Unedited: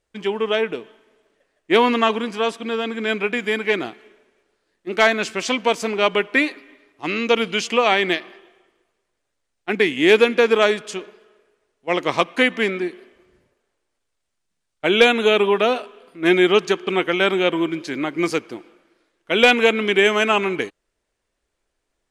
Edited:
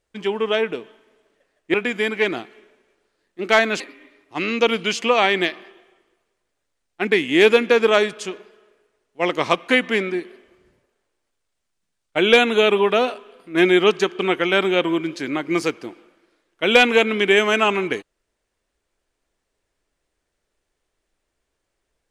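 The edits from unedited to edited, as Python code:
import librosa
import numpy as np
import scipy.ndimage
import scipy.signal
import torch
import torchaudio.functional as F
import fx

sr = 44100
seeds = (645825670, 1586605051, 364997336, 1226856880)

y = fx.edit(x, sr, fx.cut(start_s=1.74, length_s=1.48),
    fx.cut(start_s=5.28, length_s=1.2), tone=tone)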